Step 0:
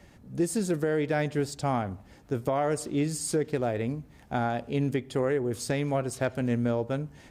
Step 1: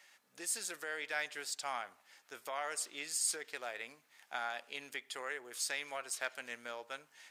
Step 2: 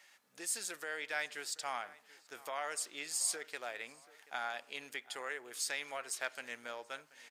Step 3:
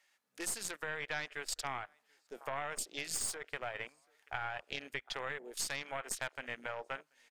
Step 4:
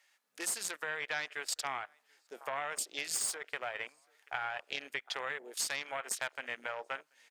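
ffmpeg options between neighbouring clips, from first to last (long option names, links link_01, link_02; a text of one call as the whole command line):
ffmpeg -i in.wav -af "highpass=1500" out.wav
ffmpeg -i in.wav -filter_complex "[0:a]asplit=2[link_01][link_02];[link_02]adelay=732,lowpass=frequency=2600:poles=1,volume=-19.5dB,asplit=2[link_03][link_04];[link_04]adelay=732,lowpass=frequency=2600:poles=1,volume=0.47,asplit=2[link_05][link_06];[link_06]adelay=732,lowpass=frequency=2600:poles=1,volume=0.47,asplit=2[link_07][link_08];[link_08]adelay=732,lowpass=frequency=2600:poles=1,volume=0.47[link_09];[link_01][link_03][link_05][link_07][link_09]amix=inputs=5:normalize=0" out.wav
ffmpeg -i in.wav -af "aeval=exprs='0.0944*(cos(1*acos(clip(val(0)/0.0944,-1,1)))-cos(1*PI/2))+0.0106*(cos(6*acos(clip(val(0)/0.0944,-1,1)))-cos(6*PI/2))':channel_layout=same,afwtdn=0.00398,acompressor=threshold=-43dB:ratio=3,volume=6.5dB" out.wav
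ffmpeg -i in.wav -af "highpass=frequency=470:poles=1,volume=3dB" out.wav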